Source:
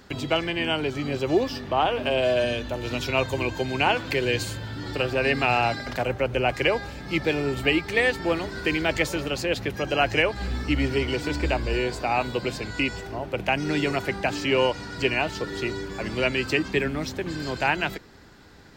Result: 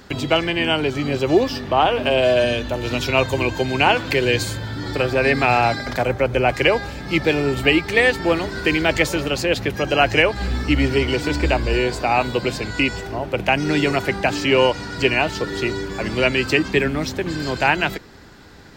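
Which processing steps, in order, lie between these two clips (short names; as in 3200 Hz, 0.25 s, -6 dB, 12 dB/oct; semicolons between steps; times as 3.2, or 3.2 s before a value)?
4.36–6.51 notch 2800 Hz, Q 8.7; gain +6 dB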